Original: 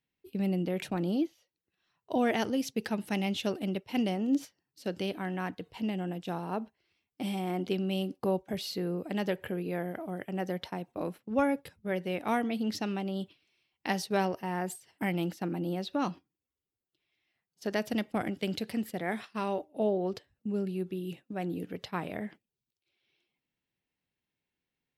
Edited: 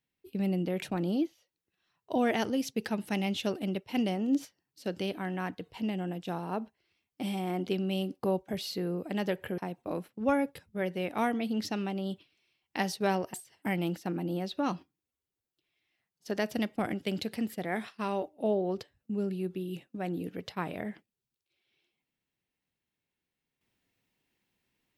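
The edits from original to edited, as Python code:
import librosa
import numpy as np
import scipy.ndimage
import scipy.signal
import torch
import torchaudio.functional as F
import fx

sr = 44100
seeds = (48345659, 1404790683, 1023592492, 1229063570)

y = fx.edit(x, sr, fx.cut(start_s=9.58, length_s=1.1),
    fx.cut(start_s=14.44, length_s=0.26), tone=tone)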